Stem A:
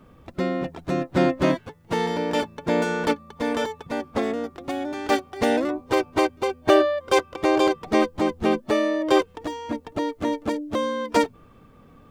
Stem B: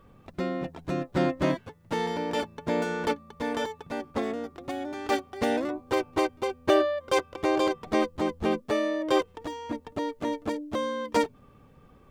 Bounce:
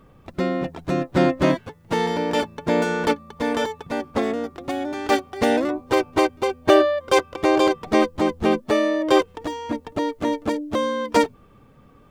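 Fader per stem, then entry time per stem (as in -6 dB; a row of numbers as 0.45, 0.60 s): -3.5, +0.5 dB; 0.00, 0.00 s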